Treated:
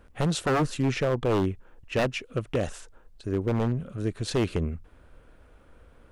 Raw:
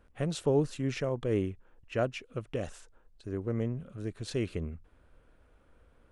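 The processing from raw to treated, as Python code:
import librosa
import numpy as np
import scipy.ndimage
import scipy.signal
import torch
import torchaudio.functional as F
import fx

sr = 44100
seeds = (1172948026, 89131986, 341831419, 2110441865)

y = fx.high_shelf(x, sr, hz=4200.0, db=-5.0, at=(0.85, 1.5))
y = 10.0 ** (-25.5 / 20.0) * (np.abs((y / 10.0 ** (-25.5 / 20.0) + 3.0) % 4.0 - 2.0) - 1.0)
y = y * 10.0 ** (8.0 / 20.0)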